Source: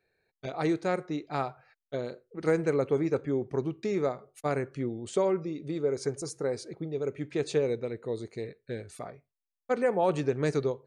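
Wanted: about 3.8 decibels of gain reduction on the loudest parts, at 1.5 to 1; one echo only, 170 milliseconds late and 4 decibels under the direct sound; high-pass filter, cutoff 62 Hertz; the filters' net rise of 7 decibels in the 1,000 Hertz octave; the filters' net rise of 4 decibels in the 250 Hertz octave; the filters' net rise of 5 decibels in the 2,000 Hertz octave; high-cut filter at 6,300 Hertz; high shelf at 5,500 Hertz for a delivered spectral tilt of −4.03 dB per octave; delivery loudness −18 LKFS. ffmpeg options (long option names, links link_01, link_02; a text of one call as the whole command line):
ffmpeg -i in.wav -af "highpass=62,lowpass=6300,equalizer=frequency=250:width_type=o:gain=5,equalizer=frequency=1000:width_type=o:gain=8.5,equalizer=frequency=2000:width_type=o:gain=4,highshelf=frequency=5500:gain=-7,acompressor=threshold=-28dB:ratio=1.5,aecho=1:1:170:0.631,volume=11.5dB" out.wav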